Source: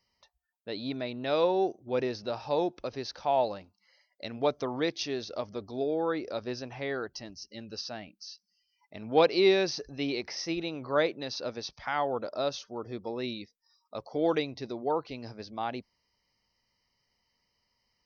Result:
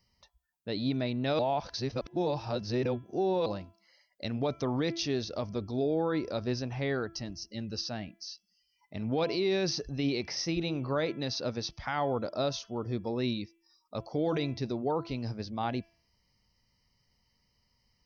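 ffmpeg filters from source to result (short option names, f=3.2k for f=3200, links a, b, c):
-filter_complex "[0:a]asplit=3[a][b][c];[a]atrim=end=1.392[d];[b]atrim=start=1.388:end=3.462,asetpts=PTS-STARTPTS,areverse[e];[c]atrim=start=3.458[f];[d][e]acrossfade=d=0.004:c1=hsin:c2=hsin[g];[g][f]acrossfade=d=0.004:c1=hsin:c2=hsin,bass=f=250:g=11,treble=f=4k:g=3,bandreject=f=334.7:t=h:w=4,bandreject=f=669.4:t=h:w=4,bandreject=f=1.0041k:t=h:w=4,bandreject=f=1.3388k:t=h:w=4,bandreject=f=1.6735k:t=h:w=4,bandreject=f=2.0082k:t=h:w=4,bandreject=f=2.3429k:t=h:w=4,bandreject=f=2.6776k:t=h:w=4,bandreject=f=3.0123k:t=h:w=4,bandreject=f=3.347k:t=h:w=4,alimiter=limit=-21dB:level=0:latency=1:release=38"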